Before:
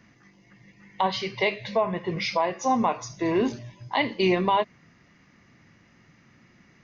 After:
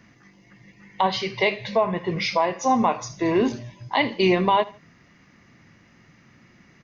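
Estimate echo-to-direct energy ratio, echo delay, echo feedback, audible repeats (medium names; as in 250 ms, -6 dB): -20.0 dB, 78 ms, 31%, 2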